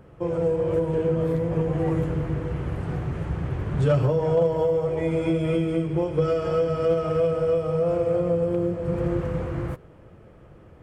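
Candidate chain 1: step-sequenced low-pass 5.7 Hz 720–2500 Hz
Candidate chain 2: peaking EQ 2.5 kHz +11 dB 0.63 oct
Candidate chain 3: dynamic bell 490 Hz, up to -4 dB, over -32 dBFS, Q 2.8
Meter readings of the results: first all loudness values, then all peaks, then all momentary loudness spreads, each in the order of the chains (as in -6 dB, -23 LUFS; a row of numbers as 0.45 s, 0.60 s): -22.5 LUFS, -24.5 LUFS, -26.5 LUFS; -6.0 dBFS, -10.5 dBFS, -12.5 dBFS; 9 LU, 8 LU, 6 LU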